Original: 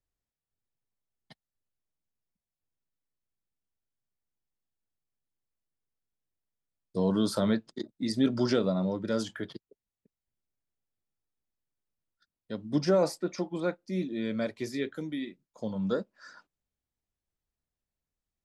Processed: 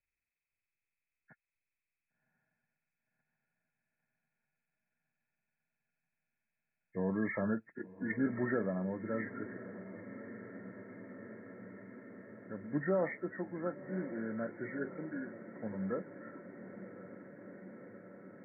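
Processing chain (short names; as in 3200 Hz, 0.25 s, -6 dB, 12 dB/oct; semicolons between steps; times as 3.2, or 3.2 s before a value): nonlinear frequency compression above 1300 Hz 4:1; diffused feedback echo 1.085 s, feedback 78%, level -13.5 dB; gain -7.5 dB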